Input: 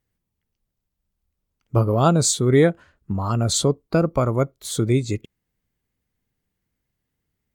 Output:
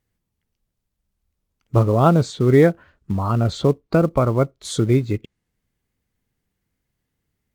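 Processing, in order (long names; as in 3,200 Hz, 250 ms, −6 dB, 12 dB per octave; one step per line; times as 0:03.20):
treble cut that deepens with the level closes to 2,300 Hz, closed at −18.5 dBFS
in parallel at −10 dB: floating-point word with a short mantissa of 2 bits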